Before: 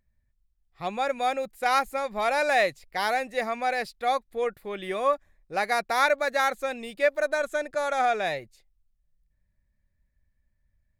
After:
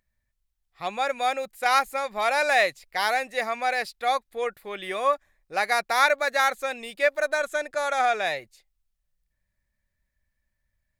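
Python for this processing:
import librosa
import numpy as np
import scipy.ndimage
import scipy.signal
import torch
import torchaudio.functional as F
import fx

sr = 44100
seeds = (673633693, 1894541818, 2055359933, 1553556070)

y = fx.low_shelf(x, sr, hz=460.0, db=-11.0)
y = y * librosa.db_to_amplitude(4.0)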